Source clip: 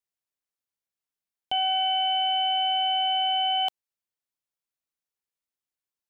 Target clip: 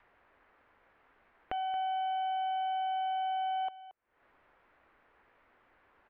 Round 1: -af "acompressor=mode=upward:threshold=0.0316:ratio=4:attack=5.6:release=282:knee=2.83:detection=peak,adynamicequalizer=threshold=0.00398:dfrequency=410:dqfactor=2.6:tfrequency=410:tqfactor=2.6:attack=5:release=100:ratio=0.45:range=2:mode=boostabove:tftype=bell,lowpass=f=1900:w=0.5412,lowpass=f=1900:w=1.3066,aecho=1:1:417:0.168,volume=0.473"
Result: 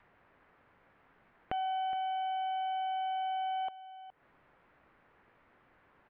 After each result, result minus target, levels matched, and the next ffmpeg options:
echo 191 ms late; 125 Hz band +8.0 dB
-af "acompressor=mode=upward:threshold=0.0316:ratio=4:attack=5.6:release=282:knee=2.83:detection=peak,adynamicequalizer=threshold=0.00398:dfrequency=410:dqfactor=2.6:tfrequency=410:tqfactor=2.6:attack=5:release=100:ratio=0.45:range=2:mode=boostabove:tftype=bell,lowpass=f=1900:w=0.5412,lowpass=f=1900:w=1.3066,aecho=1:1:226:0.168,volume=0.473"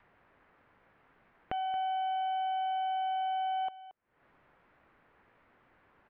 125 Hz band +6.5 dB
-af "acompressor=mode=upward:threshold=0.0316:ratio=4:attack=5.6:release=282:knee=2.83:detection=peak,adynamicequalizer=threshold=0.00398:dfrequency=410:dqfactor=2.6:tfrequency=410:tqfactor=2.6:attack=5:release=100:ratio=0.45:range=2:mode=boostabove:tftype=bell,lowpass=f=1900:w=0.5412,lowpass=f=1900:w=1.3066,equalizer=f=150:w=1:g=-10.5,aecho=1:1:226:0.168,volume=0.473"

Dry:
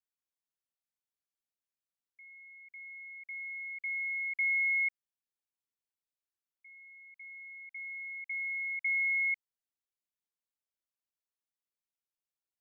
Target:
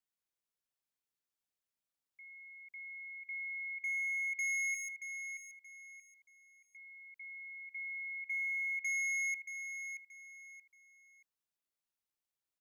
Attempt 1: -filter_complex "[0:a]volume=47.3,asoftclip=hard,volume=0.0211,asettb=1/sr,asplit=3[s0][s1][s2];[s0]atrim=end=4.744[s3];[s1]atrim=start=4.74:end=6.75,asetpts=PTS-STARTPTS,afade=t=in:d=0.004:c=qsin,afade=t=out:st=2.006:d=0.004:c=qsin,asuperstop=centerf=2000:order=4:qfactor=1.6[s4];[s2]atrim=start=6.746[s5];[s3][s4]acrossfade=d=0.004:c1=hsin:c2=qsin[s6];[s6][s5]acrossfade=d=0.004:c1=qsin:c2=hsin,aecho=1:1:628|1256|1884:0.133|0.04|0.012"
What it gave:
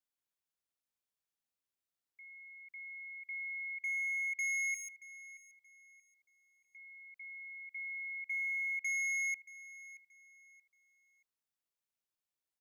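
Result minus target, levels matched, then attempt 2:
echo-to-direct -8.5 dB
-filter_complex "[0:a]volume=47.3,asoftclip=hard,volume=0.0211,asettb=1/sr,asplit=3[s0][s1][s2];[s0]atrim=end=4.744[s3];[s1]atrim=start=4.74:end=6.75,asetpts=PTS-STARTPTS,afade=t=in:d=0.004:c=qsin,afade=t=out:st=2.006:d=0.004:c=qsin,asuperstop=centerf=2000:order=4:qfactor=1.6[s4];[s2]atrim=start=6.746[s5];[s3][s4]acrossfade=d=0.004:c1=hsin:c2=qsin[s6];[s6][s5]acrossfade=d=0.004:c1=qsin:c2=hsin,aecho=1:1:628|1256|1884:0.355|0.106|0.0319"

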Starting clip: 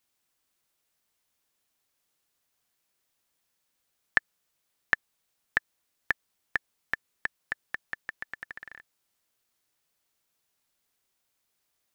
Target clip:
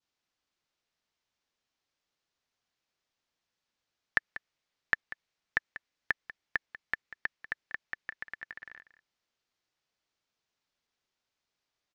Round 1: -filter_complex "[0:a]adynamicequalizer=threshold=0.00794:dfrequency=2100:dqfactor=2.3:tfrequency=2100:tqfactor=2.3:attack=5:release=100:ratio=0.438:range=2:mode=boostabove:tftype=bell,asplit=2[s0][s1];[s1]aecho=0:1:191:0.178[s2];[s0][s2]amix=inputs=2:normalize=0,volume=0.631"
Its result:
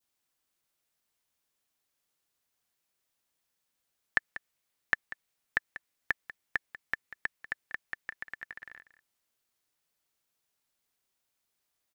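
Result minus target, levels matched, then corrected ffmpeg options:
8 kHz band +5.5 dB
-filter_complex "[0:a]adynamicequalizer=threshold=0.00794:dfrequency=2100:dqfactor=2.3:tfrequency=2100:tqfactor=2.3:attack=5:release=100:ratio=0.438:range=2:mode=boostabove:tftype=bell,lowpass=f=6000:w=0.5412,lowpass=f=6000:w=1.3066,asplit=2[s0][s1];[s1]aecho=0:1:191:0.178[s2];[s0][s2]amix=inputs=2:normalize=0,volume=0.631"

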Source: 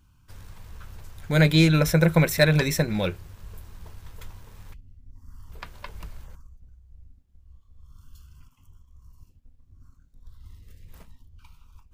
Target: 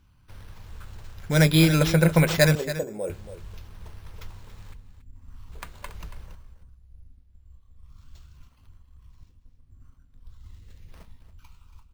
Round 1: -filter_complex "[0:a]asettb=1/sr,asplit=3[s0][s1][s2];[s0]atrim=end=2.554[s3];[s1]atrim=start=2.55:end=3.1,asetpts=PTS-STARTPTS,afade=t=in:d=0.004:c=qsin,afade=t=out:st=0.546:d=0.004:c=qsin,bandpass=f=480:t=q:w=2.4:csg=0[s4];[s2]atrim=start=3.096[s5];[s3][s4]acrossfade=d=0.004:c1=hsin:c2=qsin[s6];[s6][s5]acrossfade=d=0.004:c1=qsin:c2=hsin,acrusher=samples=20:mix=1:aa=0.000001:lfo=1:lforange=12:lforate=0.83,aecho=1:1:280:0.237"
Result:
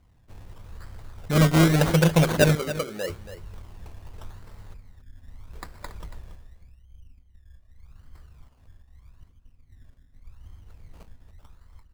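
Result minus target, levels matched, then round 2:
decimation with a swept rate: distortion +7 dB
-filter_complex "[0:a]asettb=1/sr,asplit=3[s0][s1][s2];[s0]atrim=end=2.554[s3];[s1]atrim=start=2.55:end=3.1,asetpts=PTS-STARTPTS,afade=t=in:d=0.004:c=qsin,afade=t=out:st=0.546:d=0.004:c=qsin,bandpass=f=480:t=q:w=2.4:csg=0[s4];[s2]atrim=start=3.096[s5];[s3][s4]acrossfade=d=0.004:c1=hsin:c2=qsin[s6];[s6][s5]acrossfade=d=0.004:c1=qsin:c2=hsin,acrusher=samples=5:mix=1:aa=0.000001:lfo=1:lforange=3:lforate=0.83,aecho=1:1:280:0.237"

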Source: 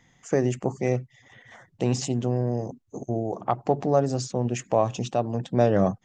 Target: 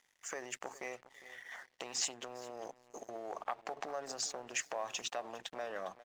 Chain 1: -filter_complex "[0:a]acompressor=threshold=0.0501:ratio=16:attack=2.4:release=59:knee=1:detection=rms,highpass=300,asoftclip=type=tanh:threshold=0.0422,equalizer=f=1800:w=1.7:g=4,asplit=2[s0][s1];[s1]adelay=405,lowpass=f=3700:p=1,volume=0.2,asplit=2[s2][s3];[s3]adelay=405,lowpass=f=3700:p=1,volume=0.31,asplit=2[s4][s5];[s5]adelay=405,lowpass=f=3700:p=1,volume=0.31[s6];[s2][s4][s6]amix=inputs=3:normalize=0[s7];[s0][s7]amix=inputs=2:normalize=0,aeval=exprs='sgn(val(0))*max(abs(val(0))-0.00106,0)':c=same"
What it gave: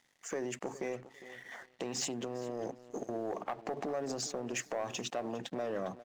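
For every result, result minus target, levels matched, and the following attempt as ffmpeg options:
250 Hz band +10.5 dB; saturation: distortion +13 dB
-filter_complex "[0:a]acompressor=threshold=0.0501:ratio=16:attack=2.4:release=59:knee=1:detection=rms,highpass=800,asoftclip=type=tanh:threshold=0.0422,equalizer=f=1800:w=1.7:g=4,asplit=2[s0][s1];[s1]adelay=405,lowpass=f=3700:p=1,volume=0.2,asplit=2[s2][s3];[s3]adelay=405,lowpass=f=3700:p=1,volume=0.31,asplit=2[s4][s5];[s5]adelay=405,lowpass=f=3700:p=1,volume=0.31[s6];[s2][s4][s6]amix=inputs=3:normalize=0[s7];[s0][s7]amix=inputs=2:normalize=0,aeval=exprs='sgn(val(0))*max(abs(val(0))-0.00106,0)':c=same"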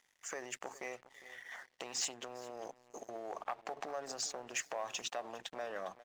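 saturation: distortion +11 dB
-filter_complex "[0:a]acompressor=threshold=0.0501:ratio=16:attack=2.4:release=59:knee=1:detection=rms,highpass=800,asoftclip=type=tanh:threshold=0.0944,equalizer=f=1800:w=1.7:g=4,asplit=2[s0][s1];[s1]adelay=405,lowpass=f=3700:p=1,volume=0.2,asplit=2[s2][s3];[s3]adelay=405,lowpass=f=3700:p=1,volume=0.31,asplit=2[s4][s5];[s5]adelay=405,lowpass=f=3700:p=1,volume=0.31[s6];[s2][s4][s6]amix=inputs=3:normalize=0[s7];[s0][s7]amix=inputs=2:normalize=0,aeval=exprs='sgn(val(0))*max(abs(val(0))-0.00106,0)':c=same"

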